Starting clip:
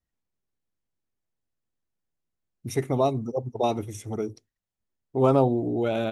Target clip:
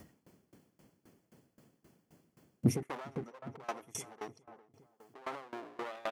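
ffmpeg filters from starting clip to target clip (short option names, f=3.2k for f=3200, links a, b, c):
-filter_complex "[0:a]asuperstop=centerf=3800:order=4:qfactor=7.7,equalizer=f=400:w=0.52:g=8.5,aeval=exprs='clip(val(0),-1,0.0447)':c=same,alimiter=limit=-20dB:level=0:latency=1:release=72,bass=f=250:g=13,treble=f=4k:g=-1,acompressor=mode=upward:threshold=-31dB:ratio=2.5,asetnsamples=n=441:p=0,asendcmd='2.83 highpass f 1100',highpass=180,asplit=2[a][b];[b]adelay=407,lowpass=f=1.5k:p=1,volume=-12dB,asplit=2[c][d];[d]adelay=407,lowpass=f=1.5k:p=1,volume=0.55,asplit=2[e][f];[f]adelay=407,lowpass=f=1.5k:p=1,volume=0.55,asplit=2[g][h];[h]adelay=407,lowpass=f=1.5k:p=1,volume=0.55,asplit=2[i][j];[j]adelay=407,lowpass=f=1.5k:p=1,volume=0.55,asplit=2[k][l];[l]adelay=407,lowpass=f=1.5k:p=1,volume=0.55[m];[a][c][e][g][i][k][m]amix=inputs=7:normalize=0,aeval=exprs='val(0)*pow(10,-23*if(lt(mod(3.8*n/s,1),2*abs(3.8)/1000),1-mod(3.8*n/s,1)/(2*abs(3.8)/1000),(mod(3.8*n/s,1)-2*abs(3.8)/1000)/(1-2*abs(3.8)/1000))/20)':c=same,volume=4.5dB"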